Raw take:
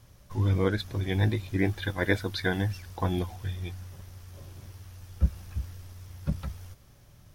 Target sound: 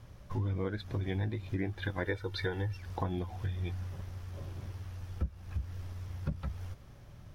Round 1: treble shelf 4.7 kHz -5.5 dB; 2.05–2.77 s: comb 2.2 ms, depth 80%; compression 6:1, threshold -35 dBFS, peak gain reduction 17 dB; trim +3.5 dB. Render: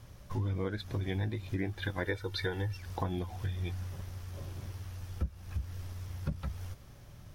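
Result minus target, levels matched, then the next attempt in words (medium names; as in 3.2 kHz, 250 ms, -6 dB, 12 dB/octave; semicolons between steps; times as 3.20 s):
8 kHz band +5.5 dB
treble shelf 4.7 kHz -14 dB; 2.05–2.77 s: comb 2.2 ms, depth 80%; compression 6:1, threshold -35 dBFS, peak gain reduction 16.5 dB; trim +3.5 dB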